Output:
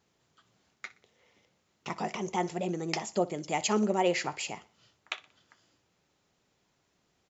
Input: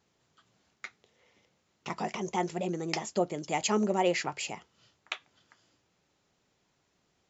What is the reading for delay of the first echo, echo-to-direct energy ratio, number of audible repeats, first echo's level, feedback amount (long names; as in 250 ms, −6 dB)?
61 ms, −18.5 dB, 2, −19.0 dB, 39%